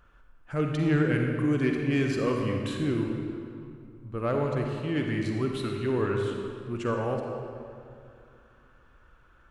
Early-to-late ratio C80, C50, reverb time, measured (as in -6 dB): 3.5 dB, 2.0 dB, 2.4 s